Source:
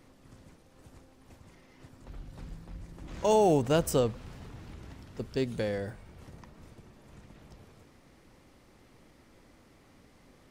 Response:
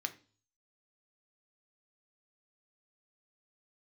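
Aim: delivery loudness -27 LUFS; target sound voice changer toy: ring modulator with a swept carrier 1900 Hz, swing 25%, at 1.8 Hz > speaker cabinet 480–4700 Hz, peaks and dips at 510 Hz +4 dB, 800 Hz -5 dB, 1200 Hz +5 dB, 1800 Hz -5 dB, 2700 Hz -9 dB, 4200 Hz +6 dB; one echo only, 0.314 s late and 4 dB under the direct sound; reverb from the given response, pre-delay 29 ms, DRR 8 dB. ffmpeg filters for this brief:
-filter_complex "[0:a]aecho=1:1:314:0.631,asplit=2[a][b];[1:a]atrim=start_sample=2205,adelay=29[c];[b][c]afir=irnorm=-1:irlink=0,volume=-9dB[d];[a][d]amix=inputs=2:normalize=0,aeval=exprs='val(0)*sin(2*PI*1900*n/s+1900*0.25/1.8*sin(2*PI*1.8*n/s))':c=same,highpass=480,equalizer=f=510:t=q:w=4:g=4,equalizer=f=800:t=q:w=4:g=-5,equalizer=f=1.2k:t=q:w=4:g=5,equalizer=f=1.8k:t=q:w=4:g=-5,equalizer=f=2.7k:t=q:w=4:g=-9,equalizer=f=4.2k:t=q:w=4:g=6,lowpass=f=4.7k:w=0.5412,lowpass=f=4.7k:w=1.3066,volume=5dB"

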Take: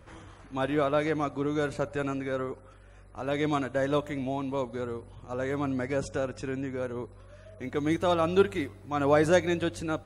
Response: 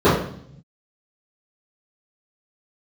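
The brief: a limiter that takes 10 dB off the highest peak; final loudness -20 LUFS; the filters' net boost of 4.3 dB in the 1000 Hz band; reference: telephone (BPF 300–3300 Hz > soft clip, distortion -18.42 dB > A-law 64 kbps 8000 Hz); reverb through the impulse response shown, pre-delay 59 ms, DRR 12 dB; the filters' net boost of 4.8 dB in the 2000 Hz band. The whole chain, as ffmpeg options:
-filter_complex "[0:a]equalizer=f=1k:t=o:g=4.5,equalizer=f=2k:t=o:g=5,alimiter=limit=-17dB:level=0:latency=1,asplit=2[a][b];[1:a]atrim=start_sample=2205,adelay=59[c];[b][c]afir=irnorm=-1:irlink=0,volume=-38dB[d];[a][d]amix=inputs=2:normalize=0,highpass=300,lowpass=3.3k,asoftclip=threshold=-19.5dB,volume=11.5dB" -ar 8000 -c:a pcm_alaw

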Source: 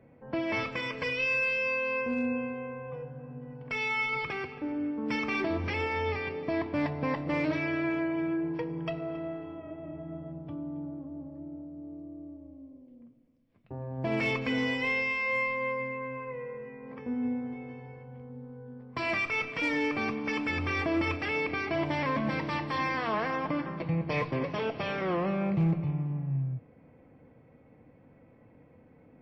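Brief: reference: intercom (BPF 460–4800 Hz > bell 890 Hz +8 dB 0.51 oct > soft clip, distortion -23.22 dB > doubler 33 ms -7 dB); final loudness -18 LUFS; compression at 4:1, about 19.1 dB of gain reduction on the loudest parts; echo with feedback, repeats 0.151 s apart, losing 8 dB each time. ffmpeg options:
-filter_complex "[0:a]acompressor=threshold=-47dB:ratio=4,highpass=460,lowpass=4.8k,equalizer=f=890:t=o:w=0.51:g=8,aecho=1:1:151|302|453|604|755:0.398|0.159|0.0637|0.0255|0.0102,asoftclip=threshold=-36dB,asplit=2[a][b];[b]adelay=33,volume=-7dB[c];[a][c]amix=inputs=2:normalize=0,volume=29dB"

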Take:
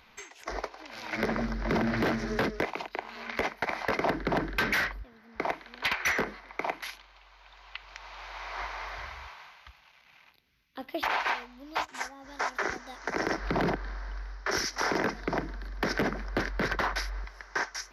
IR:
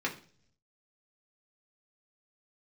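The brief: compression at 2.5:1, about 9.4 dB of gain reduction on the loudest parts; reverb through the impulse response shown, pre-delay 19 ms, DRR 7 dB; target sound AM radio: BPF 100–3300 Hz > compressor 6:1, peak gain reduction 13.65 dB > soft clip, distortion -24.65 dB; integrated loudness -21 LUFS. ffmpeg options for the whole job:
-filter_complex "[0:a]acompressor=threshold=-39dB:ratio=2.5,asplit=2[a][b];[1:a]atrim=start_sample=2205,adelay=19[c];[b][c]afir=irnorm=-1:irlink=0,volume=-13.5dB[d];[a][d]amix=inputs=2:normalize=0,highpass=100,lowpass=3.3k,acompressor=threshold=-47dB:ratio=6,asoftclip=threshold=-34.5dB,volume=30dB"

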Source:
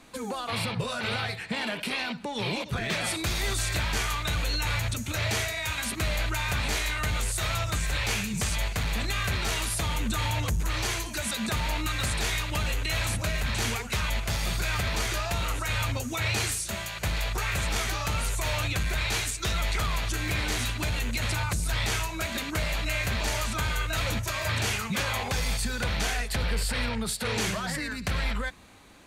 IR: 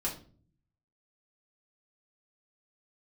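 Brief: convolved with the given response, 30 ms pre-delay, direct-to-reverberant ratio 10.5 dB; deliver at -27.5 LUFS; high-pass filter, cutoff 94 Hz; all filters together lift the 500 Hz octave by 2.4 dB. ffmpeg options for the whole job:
-filter_complex "[0:a]highpass=94,equalizer=f=500:t=o:g=3,asplit=2[a][b];[1:a]atrim=start_sample=2205,adelay=30[c];[b][c]afir=irnorm=-1:irlink=0,volume=-14.5dB[d];[a][d]amix=inputs=2:normalize=0,volume=1.5dB"

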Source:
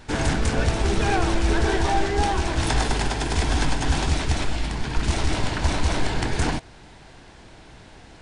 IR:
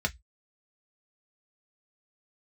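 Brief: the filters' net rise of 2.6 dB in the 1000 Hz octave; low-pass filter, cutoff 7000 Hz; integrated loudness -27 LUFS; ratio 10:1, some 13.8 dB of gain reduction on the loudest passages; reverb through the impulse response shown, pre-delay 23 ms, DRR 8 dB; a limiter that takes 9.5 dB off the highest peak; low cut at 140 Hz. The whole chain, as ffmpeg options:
-filter_complex "[0:a]highpass=140,lowpass=7k,equalizer=f=1k:t=o:g=3.5,acompressor=threshold=-32dB:ratio=10,alimiter=level_in=5.5dB:limit=-24dB:level=0:latency=1,volume=-5.5dB,asplit=2[a][b];[1:a]atrim=start_sample=2205,adelay=23[c];[b][c]afir=irnorm=-1:irlink=0,volume=-15.5dB[d];[a][d]amix=inputs=2:normalize=0,volume=11.5dB"

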